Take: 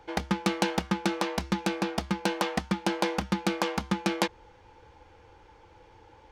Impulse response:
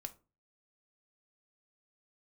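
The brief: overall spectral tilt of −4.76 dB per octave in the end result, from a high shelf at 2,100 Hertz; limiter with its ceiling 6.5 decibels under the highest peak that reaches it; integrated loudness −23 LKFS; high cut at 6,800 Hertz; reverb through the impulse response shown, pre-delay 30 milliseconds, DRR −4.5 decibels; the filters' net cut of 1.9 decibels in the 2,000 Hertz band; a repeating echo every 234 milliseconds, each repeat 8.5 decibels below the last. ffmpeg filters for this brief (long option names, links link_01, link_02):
-filter_complex "[0:a]lowpass=6800,equalizer=frequency=2000:width_type=o:gain=-4.5,highshelf=frequency=2100:gain=3.5,alimiter=limit=-17dB:level=0:latency=1,aecho=1:1:234|468|702|936:0.376|0.143|0.0543|0.0206,asplit=2[link_01][link_02];[1:a]atrim=start_sample=2205,adelay=30[link_03];[link_02][link_03]afir=irnorm=-1:irlink=0,volume=8.5dB[link_04];[link_01][link_04]amix=inputs=2:normalize=0,volume=2.5dB"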